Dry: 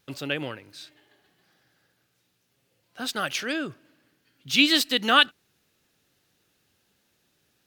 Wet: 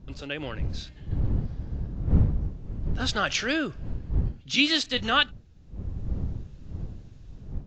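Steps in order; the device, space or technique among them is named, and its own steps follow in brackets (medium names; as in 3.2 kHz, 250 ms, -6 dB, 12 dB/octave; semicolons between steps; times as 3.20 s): smartphone video outdoors (wind noise 94 Hz -31 dBFS; level rider gain up to 9.5 dB; trim -6.5 dB; AAC 48 kbps 16 kHz)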